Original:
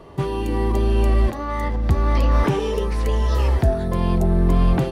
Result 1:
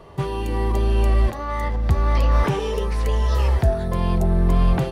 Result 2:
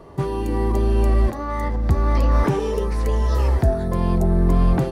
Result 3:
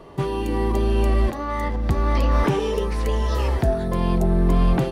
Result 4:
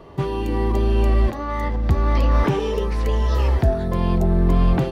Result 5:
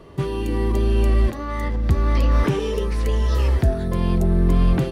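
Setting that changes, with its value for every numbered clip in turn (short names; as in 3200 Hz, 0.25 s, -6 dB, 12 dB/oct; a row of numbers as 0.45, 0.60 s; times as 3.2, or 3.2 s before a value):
bell, frequency: 280, 3000, 82, 9600, 810 Hz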